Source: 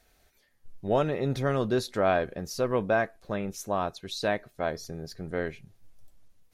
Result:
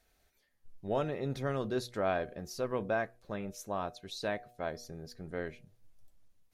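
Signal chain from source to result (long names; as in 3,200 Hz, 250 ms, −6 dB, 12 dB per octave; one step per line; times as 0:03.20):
hum removal 120.9 Hz, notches 6
level −7 dB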